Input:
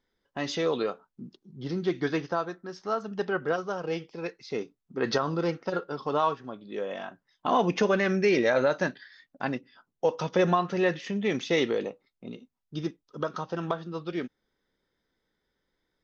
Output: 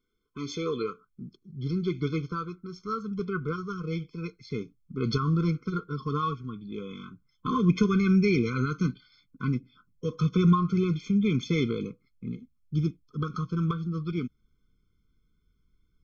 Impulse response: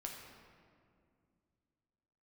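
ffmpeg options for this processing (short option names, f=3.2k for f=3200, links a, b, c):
-af "asubboost=boost=8.5:cutoff=140,afftfilt=real='re*eq(mod(floor(b*sr/1024/510),2),0)':imag='im*eq(mod(floor(b*sr/1024/510),2),0)':win_size=1024:overlap=0.75"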